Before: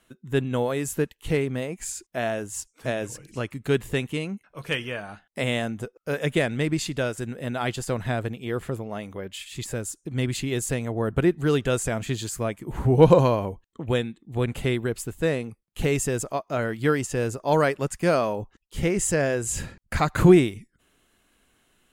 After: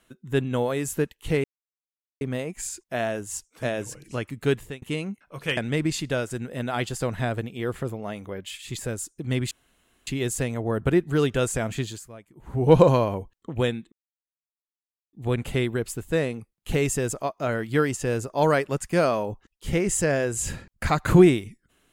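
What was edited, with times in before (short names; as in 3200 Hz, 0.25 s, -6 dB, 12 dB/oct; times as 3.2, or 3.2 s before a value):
1.44 insert silence 0.77 s
3.73–4.05 fade out
4.8–6.44 cut
10.38 insert room tone 0.56 s
12.09–13.06 dip -16.5 dB, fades 0.30 s
14.23 insert silence 1.21 s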